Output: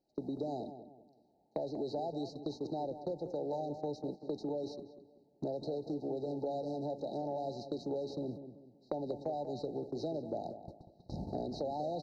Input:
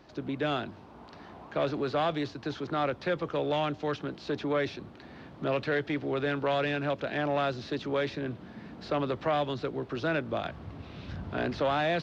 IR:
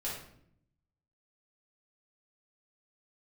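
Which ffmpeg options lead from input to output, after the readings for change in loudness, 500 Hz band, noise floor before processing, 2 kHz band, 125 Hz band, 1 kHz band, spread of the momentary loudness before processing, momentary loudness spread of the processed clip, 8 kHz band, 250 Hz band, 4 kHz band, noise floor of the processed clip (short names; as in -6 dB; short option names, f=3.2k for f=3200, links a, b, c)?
-8.0 dB, -7.0 dB, -50 dBFS, under -40 dB, -9.5 dB, -10.0 dB, 15 LU, 9 LU, n/a, -6.0 dB, -14.5 dB, -70 dBFS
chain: -filter_complex "[0:a]afftfilt=real='re*(1-between(b*sr/4096,900,3800))':imag='im*(1-between(b*sr/4096,900,3800))':win_size=4096:overlap=0.75,agate=range=-30dB:threshold=-38dB:ratio=16:detection=peak,equalizer=f=81:t=o:w=1.3:g=-11.5,acompressor=threshold=-42dB:ratio=6,asplit=2[a][b];[b]adelay=191,lowpass=f=1.7k:p=1,volume=-10dB,asplit=2[c][d];[d]adelay=191,lowpass=f=1.7k:p=1,volume=0.37,asplit=2[e][f];[f]adelay=191,lowpass=f=1.7k:p=1,volume=0.37,asplit=2[g][h];[h]adelay=191,lowpass=f=1.7k:p=1,volume=0.37[i];[a][c][e][g][i]amix=inputs=5:normalize=0,volume=6dB"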